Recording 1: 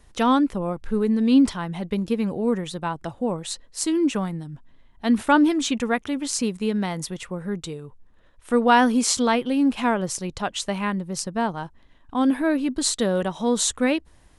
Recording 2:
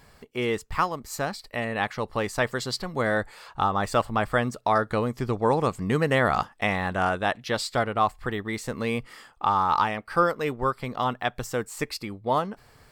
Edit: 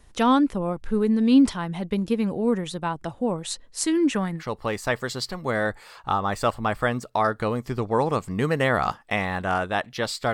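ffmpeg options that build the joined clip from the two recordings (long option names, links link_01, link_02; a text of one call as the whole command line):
ffmpeg -i cue0.wav -i cue1.wav -filter_complex "[0:a]asettb=1/sr,asplit=3[link_01][link_02][link_03];[link_01]atrim=end=3.834[link_04];[link_02]atrim=start=3.83:end=4.43,asetpts=PTS-STARTPTS,afade=type=in:duration=0.004:curve=qsin,afade=type=out:start_time=0.596:duration=0.004:curve=qsin,equalizer=frequency=1800:width_type=o:width=0.42:gain=8.5[link_05];[link_03]atrim=start=4.426[link_06];[link_04][link_05]acrossfade=duration=0.004:curve1=hsin:curve2=qsin[link_07];[link_07][link_06]acrossfade=duration=0.004:curve1=qsin:curve2=hsin,apad=whole_dur=10.33,atrim=end=10.33,atrim=end=4.43,asetpts=PTS-STARTPTS[link_08];[1:a]atrim=start=1.86:end=7.84,asetpts=PTS-STARTPTS[link_09];[link_08][link_09]acrossfade=duration=0.08:curve1=tri:curve2=tri" out.wav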